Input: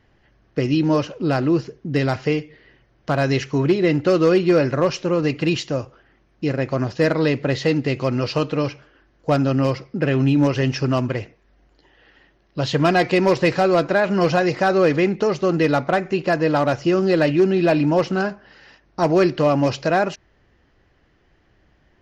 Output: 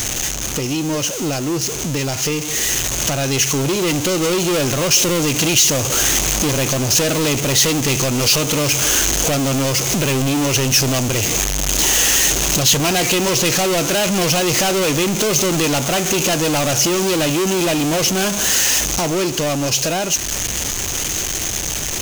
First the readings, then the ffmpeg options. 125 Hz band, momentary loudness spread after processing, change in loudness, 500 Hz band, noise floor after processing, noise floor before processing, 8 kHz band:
+1.0 dB, 6 LU, +3.5 dB, −1.5 dB, −23 dBFS, −60 dBFS, can't be measured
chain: -filter_complex "[0:a]aeval=exprs='val(0)+0.5*0.0447*sgn(val(0))':channel_layout=same,equalizer=frequency=6400:width_type=o:width=0.29:gain=14.5,asplit=2[link_01][link_02];[link_02]acompressor=threshold=-28dB:ratio=6,volume=1.5dB[link_03];[link_01][link_03]amix=inputs=2:normalize=0,alimiter=limit=-8.5dB:level=0:latency=1:release=363,dynaudnorm=framelen=230:gausssize=31:maxgain=11.5dB,asoftclip=type=tanh:threshold=-14dB,aexciter=amount=2.4:drive=6.5:freq=2500,volume=-2dB"

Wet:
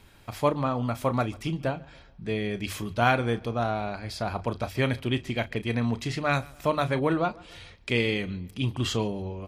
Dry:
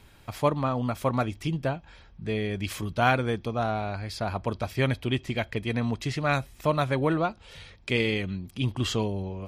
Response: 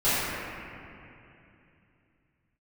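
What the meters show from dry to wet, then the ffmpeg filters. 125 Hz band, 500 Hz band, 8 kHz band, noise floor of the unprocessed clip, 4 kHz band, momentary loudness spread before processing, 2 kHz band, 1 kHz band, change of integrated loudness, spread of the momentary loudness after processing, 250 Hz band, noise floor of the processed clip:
−1.0 dB, 0.0 dB, 0.0 dB, −54 dBFS, 0.0 dB, 7 LU, 0.0 dB, 0.0 dB, 0.0 dB, 7 LU, 0.0 dB, −53 dBFS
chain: -filter_complex "[0:a]bandreject=frequency=50:width_type=h:width=6,bandreject=frequency=100:width_type=h:width=6,bandreject=frequency=150:width_type=h:width=6,asplit=2[link_01][link_02];[link_02]adelay=34,volume=-13dB[link_03];[link_01][link_03]amix=inputs=2:normalize=0,asplit=2[link_04][link_05];[link_05]adelay=141,lowpass=frequency=4100:poles=1,volume=-23.5dB,asplit=2[link_06][link_07];[link_07]adelay=141,lowpass=frequency=4100:poles=1,volume=0.46,asplit=2[link_08][link_09];[link_09]adelay=141,lowpass=frequency=4100:poles=1,volume=0.46[link_10];[link_04][link_06][link_08][link_10]amix=inputs=4:normalize=0"

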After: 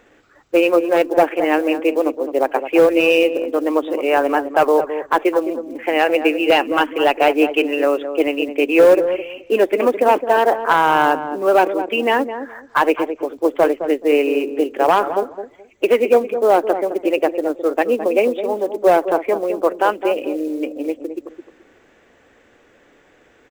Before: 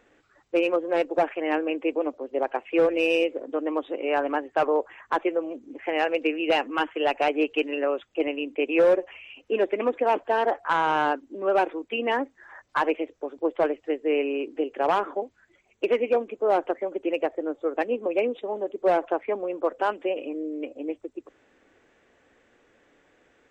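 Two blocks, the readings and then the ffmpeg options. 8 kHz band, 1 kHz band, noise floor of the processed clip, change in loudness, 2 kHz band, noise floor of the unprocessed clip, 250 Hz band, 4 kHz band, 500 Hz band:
can't be measured, +9.0 dB, −53 dBFS, +9.0 dB, +8.5 dB, −64 dBFS, +9.0 dB, +8.5 dB, +9.0 dB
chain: -filter_complex "[0:a]acrusher=bits=7:mode=log:mix=0:aa=0.000001,asplit=2[link_01][link_02];[link_02]adelay=213,lowpass=frequency=800:poles=1,volume=-8dB,asplit=2[link_03][link_04];[link_04]adelay=213,lowpass=frequency=800:poles=1,volume=0.22,asplit=2[link_05][link_06];[link_06]adelay=213,lowpass=frequency=800:poles=1,volume=0.22[link_07];[link_01][link_03][link_05][link_07]amix=inputs=4:normalize=0,volume=8.5dB"

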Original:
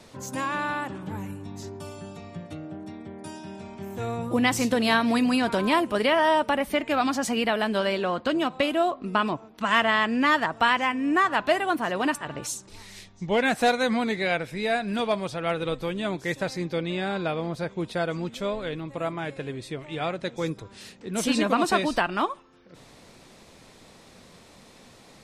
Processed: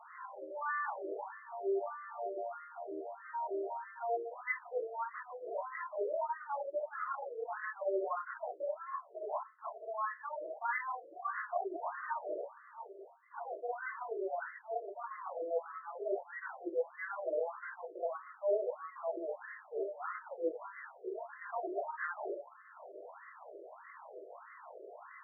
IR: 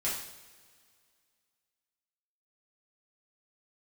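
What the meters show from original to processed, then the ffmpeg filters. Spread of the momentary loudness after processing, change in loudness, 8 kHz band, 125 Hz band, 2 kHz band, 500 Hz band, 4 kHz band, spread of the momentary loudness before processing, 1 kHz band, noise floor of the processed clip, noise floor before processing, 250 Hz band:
15 LU, −14.5 dB, below −40 dB, below −40 dB, −16.0 dB, −10.0 dB, below −40 dB, 17 LU, −12.5 dB, −57 dBFS, −52 dBFS, −24.0 dB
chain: -filter_complex "[0:a]highpass=frequency=210:width=0.5412,highpass=frequency=210:width=1.3066,areverse,acompressor=threshold=-36dB:ratio=20,areverse,aeval=exprs='0.0501*(cos(1*acos(clip(val(0)/0.0501,-1,1)))-cos(1*PI/2))+0.00282*(cos(5*acos(clip(val(0)/0.0501,-1,1)))-cos(5*PI/2))+0.002*(cos(6*acos(clip(val(0)/0.0501,-1,1)))-cos(6*PI/2))':channel_layout=same[link_01];[1:a]atrim=start_sample=2205,atrim=end_sample=3528[link_02];[link_01][link_02]afir=irnorm=-1:irlink=0,afftfilt=real='re*between(b*sr/1024,460*pow(1500/460,0.5+0.5*sin(2*PI*1.6*pts/sr))/1.41,460*pow(1500/460,0.5+0.5*sin(2*PI*1.6*pts/sr))*1.41)':imag='im*between(b*sr/1024,460*pow(1500/460,0.5+0.5*sin(2*PI*1.6*pts/sr))/1.41,460*pow(1500/460,0.5+0.5*sin(2*PI*1.6*pts/sr))*1.41)':win_size=1024:overlap=0.75,volume=1.5dB"

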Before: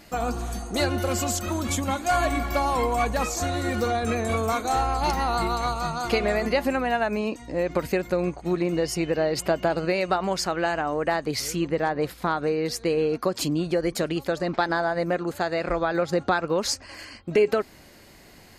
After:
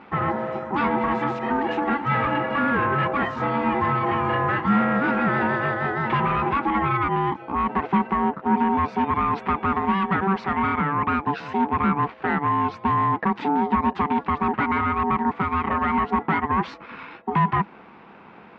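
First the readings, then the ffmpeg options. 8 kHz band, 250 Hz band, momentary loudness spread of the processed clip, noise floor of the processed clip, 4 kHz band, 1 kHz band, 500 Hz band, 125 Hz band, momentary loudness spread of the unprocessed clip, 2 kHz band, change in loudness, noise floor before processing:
below −30 dB, +4.0 dB, 4 LU, −46 dBFS, −8.0 dB, +6.0 dB, −4.5 dB, +3.0 dB, 4 LU, +3.5 dB, +2.5 dB, −50 dBFS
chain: -af "volume=23dB,asoftclip=hard,volume=-23dB,aeval=exprs='val(0)*sin(2*PI*580*n/s)':channel_layout=same,highpass=100,equalizer=frequency=110:width_type=q:width=4:gain=-6,equalizer=frequency=200:width_type=q:width=4:gain=8,equalizer=frequency=590:width_type=q:width=4:gain=-8,equalizer=frequency=990:width_type=q:width=4:gain=3,lowpass=frequency=2400:width=0.5412,lowpass=frequency=2400:width=1.3066,volume=8dB"

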